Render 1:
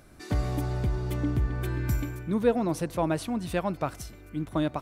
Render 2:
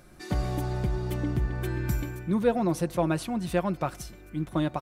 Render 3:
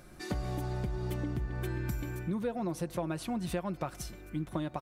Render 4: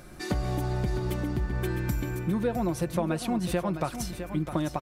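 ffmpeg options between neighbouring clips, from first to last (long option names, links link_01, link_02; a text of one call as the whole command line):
ffmpeg -i in.wav -af "aecho=1:1:5.6:0.42" out.wav
ffmpeg -i in.wav -af "acompressor=threshold=-31dB:ratio=6" out.wav
ffmpeg -i in.wav -af "aecho=1:1:658:0.335,volume=6dB" out.wav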